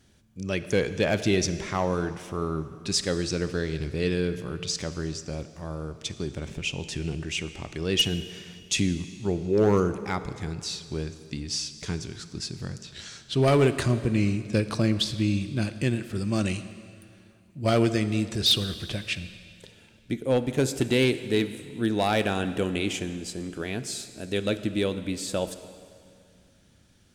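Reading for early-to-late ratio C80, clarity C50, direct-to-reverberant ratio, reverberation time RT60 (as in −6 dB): 13.0 dB, 12.0 dB, 11.5 dB, 2.3 s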